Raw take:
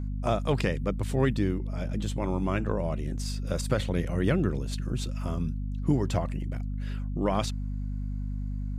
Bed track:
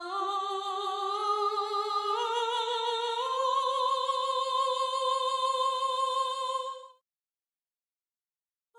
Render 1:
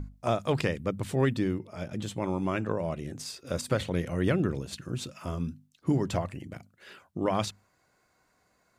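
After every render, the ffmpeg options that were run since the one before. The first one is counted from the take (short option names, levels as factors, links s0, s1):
-af "bandreject=f=50:t=h:w=6,bandreject=f=100:t=h:w=6,bandreject=f=150:t=h:w=6,bandreject=f=200:t=h:w=6,bandreject=f=250:t=h:w=6"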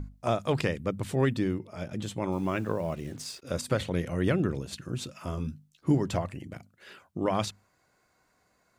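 -filter_complex "[0:a]asettb=1/sr,asplit=3[s0][s1][s2];[s0]atrim=end=2.324[s3];[s1]atrim=start=2.32:end=3.42,asetpts=PTS-STARTPTS,afade=t=in:d=0.004:c=qsin,afade=t=out:st=1.096:d=0.004:c=qsin,acrusher=bits=8:mix=0:aa=0.5[s4];[s2]atrim=start=3.416[s5];[s3][s4]acrossfade=d=0.004:c1=hsin:c2=qsin[s6];[s6][s5]acrossfade=d=0.004:c1=qsin:c2=hsin,asettb=1/sr,asplit=3[s7][s8][s9];[s7]atrim=end=5.364[s10];[s8]atrim=start=5.36:end=5.95,asetpts=PTS-STARTPTS,afade=t=in:d=0.004:c=qsin,afade=t=out:st=0.586:d=0.004:c=qsin,asplit=2[s11][s12];[s12]adelay=14,volume=0.501[s13];[s11][s13]amix=inputs=2:normalize=0,atrim=end_sample=26019[s14];[s9]atrim=start=5.946[s15];[s10][s14]acrossfade=d=0.004:c1=hsin:c2=qsin[s16];[s16][s15]acrossfade=d=0.004:c1=qsin:c2=hsin"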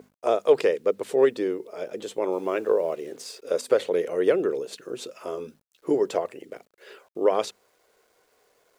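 -af "highpass=f=440:t=q:w=4.9,acrusher=bits=10:mix=0:aa=0.000001"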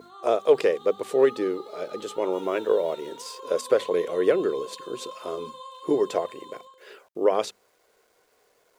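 -filter_complex "[1:a]volume=0.211[s0];[0:a][s0]amix=inputs=2:normalize=0"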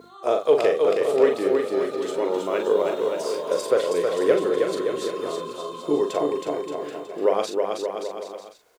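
-filter_complex "[0:a]asplit=2[s0][s1];[s1]adelay=41,volume=0.501[s2];[s0][s2]amix=inputs=2:normalize=0,aecho=1:1:320|576|780.8|944.6|1076:0.631|0.398|0.251|0.158|0.1"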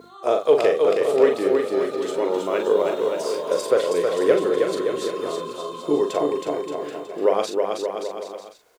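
-af "volume=1.19"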